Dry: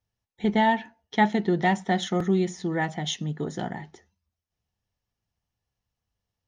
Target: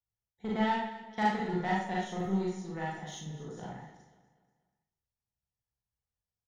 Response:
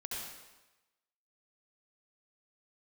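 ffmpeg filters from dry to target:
-filter_complex "[0:a]equalizer=f=2.9k:t=o:w=1.1:g=-8,aeval=exprs='0.376*(cos(1*acos(clip(val(0)/0.376,-1,1)))-cos(1*PI/2))+0.0266*(cos(7*acos(clip(val(0)/0.376,-1,1)))-cos(7*PI/2))':c=same,equalizer=f=310:t=o:w=0.71:g=-5.5,aecho=1:1:242|484|726|968:0.158|0.065|0.0266|0.0109[a];[1:a]atrim=start_sample=2205,asetrate=83790,aresample=44100[b];[a][b]afir=irnorm=-1:irlink=0"

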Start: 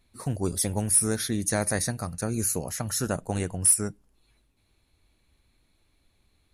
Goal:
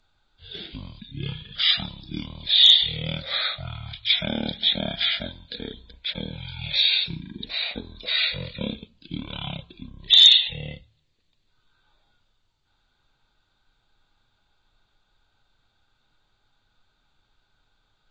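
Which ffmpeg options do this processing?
-filter_complex "[0:a]highshelf=f=8.5k:g=11.5,acrossover=split=310|6500[a][b][c];[a]acompressor=threshold=-46dB:ratio=6[d];[d][b][c]amix=inputs=3:normalize=0,asetrate=15920,aresample=44100,volume=-1dB"

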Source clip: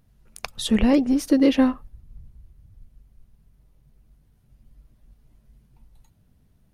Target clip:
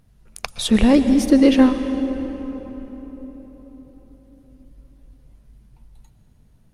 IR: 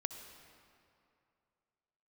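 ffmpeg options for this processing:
-filter_complex "[0:a]asplit=2[a][b];[1:a]atrim=start_sample=2205,asetrate=22491,aresample=44100[c];[b][c]afir=irnorm=-1:irlink=0,volume=4.5dB[d];[a][d]amix=inputs=2:normalize=0,volume=-6dB"

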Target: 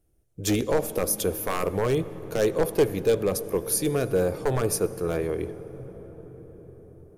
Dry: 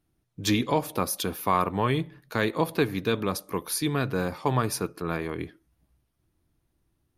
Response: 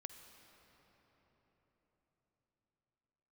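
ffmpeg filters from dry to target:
-filter_complex "[0:a]aeval=exprs='0.141*(abs(mod(val(0)/0.141+3,4)-2)-1)':c=same,equalizer=f=125:t=o:w=1:g=-8,equalizer=f=250:t=o:w=1:g=-9,equalizer=f=500:t=o:w=1:g=8,equalizer=f=1k:t=o:w=1:g=-10,equalizer=f=2k:t=o:w=1:g=-5,equalizer=f=4k:t=o:w=1:g=-9,equalizer=f=8k:t=o:w=1:g=3,asplit=2[a][b];[1:a]atrim=start_sample=2205,asetrate=29106,aresample=44100,lowshelf=f=320:g=12[c];[b][c]afir=irnorm=-1:irlink=0,volume=-3.5dB[d];[a][d]amix=inputs=2:normalize=0,volume=1dB"

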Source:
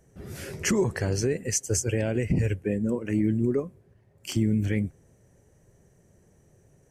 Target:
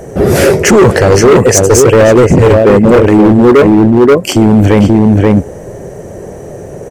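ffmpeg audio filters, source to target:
-filter_complex "[0:a]asplit=2[a][b];[b]adelay=530.6,volume=-7dB,highshelf=f=4k:g=-11.9[c];[a][c]amix=inputs=2:normalize=0,areverse,acompressor=threshold=-33dB:ratio=5,areverse,equalizer=f=550:w=0.62:g=13,volume=28dB,asoftclip=hard,volume=-28dB,acontrast=53,apsyclip=22.5dB,volume=-1.5dB"

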